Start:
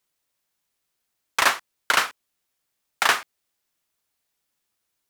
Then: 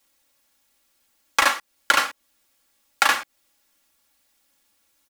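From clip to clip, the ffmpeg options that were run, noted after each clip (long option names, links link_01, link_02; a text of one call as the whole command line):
ffmpeg -i in.wav -filter_complex "[0:a]aecho=1:1:3.6:0.98,acrossover=split=760|2000[link_01][link_02][link_03];[link_01]acompressor=threshold=-39dB:ratio=4[link_04];[link_02]acompressor=threshold=-29dB:ratio=4[link_05];[link_03]acompressor=threshold=-32dB:ratio=4[link_06];[link_04][link_05][link_06]amix=inputs=3:normalize=0,volume=8dB" out.wav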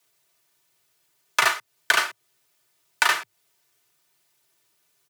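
ffmpeg -i in.wav -af "afreqshift=100,volume=-1.5dB" out.wav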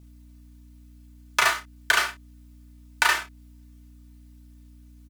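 ffmpeg -i in.wav -filter_complex "[0:a]aeval=exprs='val(0)+0.00447*(sin(2*PI*60*n/s)+sin(2*PI*2*60*n/s)/2+sin(2*PI*3*60*n/s)/3+sin(2*PI*4*60*n/s)/4+sin(2*PI*5*60*n/s)/5)':channel_layout=same,asplit=2[link_01][link_02];[link_02]aecho=0:1:30|54:0.398|0.178[link_03];[link_01][link_03]amix=inputs=2:normalize=0,volume=-1.5dB" out.wav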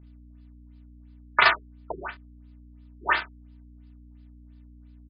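ffmpeg -i in.wav -filter_complex "[0:a]asplit=2[link_01][link_02];[link_02]aeval=exprs='val(0)*gte(abs(val(0)),0.0335)':channel_layout=same,volume=-7dB[link_03];[link_01][link_03]amix=inputs=2:normalize=0,afftfilt=real='re*lt(b*sr/1024,390*pow(5200/390,0.5+0.5*sin(2*PI*2.9*pts/sr)))':imag='im*lt(b*sr/1024,390*pow(5200/390,0.5+0.5*sin(2*PI*2.9*pts/sr)))':win_size=1024:overlap=0.75" out.wav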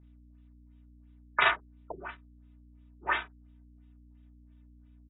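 ffmpeg -i in.wav -af "volume=-6.5dB" -ar 22050 -c:a aac -b:a 16k out.aac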